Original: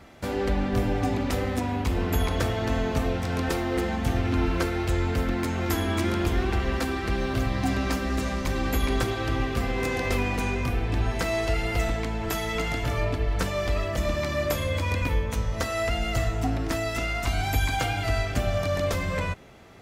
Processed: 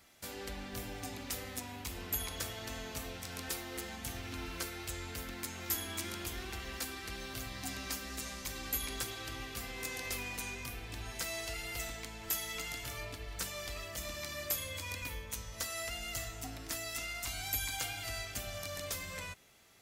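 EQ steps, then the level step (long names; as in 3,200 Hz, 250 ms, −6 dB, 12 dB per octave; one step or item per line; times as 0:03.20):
first-order pre-emphasis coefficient 0.9
0.0 dB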